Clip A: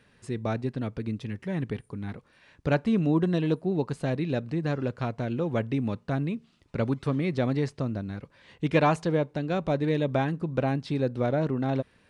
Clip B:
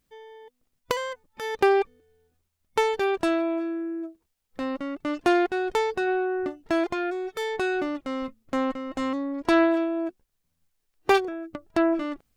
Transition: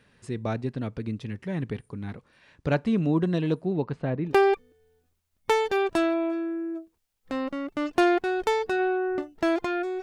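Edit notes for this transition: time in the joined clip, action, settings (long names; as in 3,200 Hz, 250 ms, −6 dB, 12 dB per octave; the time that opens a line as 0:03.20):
clip A
0:03.72–0:04.34: low-pass filter 4,500 Hz → 1,200 Hz
0:04.30: continue with clip B from 0:01.58, crossfade 0.08 s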